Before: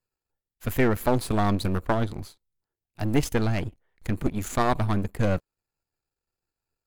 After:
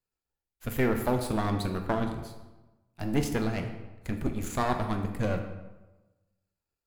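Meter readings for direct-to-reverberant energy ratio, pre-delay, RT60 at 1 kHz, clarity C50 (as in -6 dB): 4.5 dB, 6 ms, 1.1 s, 7.5 dB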